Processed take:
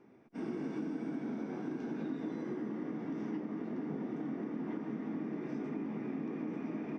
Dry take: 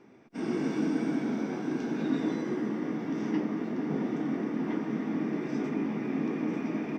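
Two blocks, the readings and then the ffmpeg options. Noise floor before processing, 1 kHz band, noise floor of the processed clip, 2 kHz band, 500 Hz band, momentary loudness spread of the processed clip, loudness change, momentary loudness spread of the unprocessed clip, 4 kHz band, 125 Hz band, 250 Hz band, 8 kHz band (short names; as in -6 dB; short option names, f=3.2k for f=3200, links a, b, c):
-48 dBFS, -8.5 dB, -54 dBFS, -10.5 dB, -7.5 dB, 1 LU, -8.0 dB, 3 LU, under -10 dB, -7.5 dB, -7.5 dB, n/a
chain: -af "highshelf=f=2.6k:g=-9,acompressor=threshold=-30dB:ratio=6,volume=-4.5dB"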